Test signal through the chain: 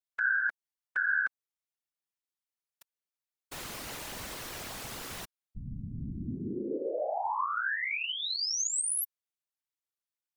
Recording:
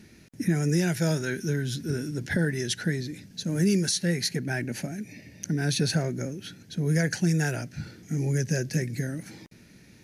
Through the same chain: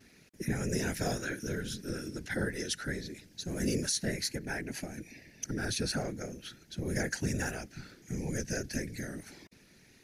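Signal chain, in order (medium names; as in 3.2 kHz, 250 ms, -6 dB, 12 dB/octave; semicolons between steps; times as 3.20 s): vibrato 0.31 Hz 21 cents; bass shelf 310 Hz -8 dB; whisper effect; dynamic bell 3.1 kHz, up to -4 dB, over -39 dBFS, Q 1.1; trim -3.5 dB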